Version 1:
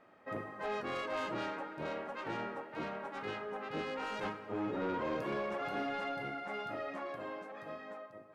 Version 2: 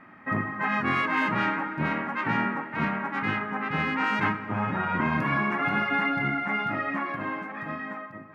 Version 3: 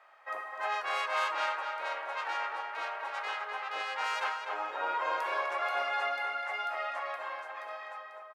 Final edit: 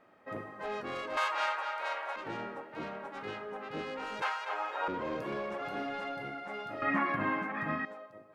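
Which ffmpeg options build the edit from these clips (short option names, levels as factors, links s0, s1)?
-filter_complex "[2:a]asplit=2[s0][s1];[0:a]asplit=4[s2][s3][s4][s5];[s2]atrim=end=1.172[s6];[s0]atrim=start=1.168:end=2.162[s7];[s3]atrim=start=2.158:end=4.222[s8];[s1]atrim=start=4.218:end=4.882[s9];[s4]atrim=start=4.878:end=6.822[s10];[1:a]atrim=start=6.818:end=7.852[s11];[s5]atrim=start=7.848[s12];[s6][s7]acrossfade=d=0.004:c1=hsin:c2=hsin[s13];[s13][s8]acrossfade=d=0.004:c1=hsin:c2=hsin[s14];[s14][s9]acrossfade=d=0.004:c1=hsin:c2=hsin[s15];[s15][s10]acrossfade=d=0.004:c1=hsin:c2=hsin[s16];[s16][s11]acrossfade=d=0.004:c1=hsin:c2=hsin[s17];[s17][s12]acrossfade=d=0.004:c1=hsin:c2=hsin"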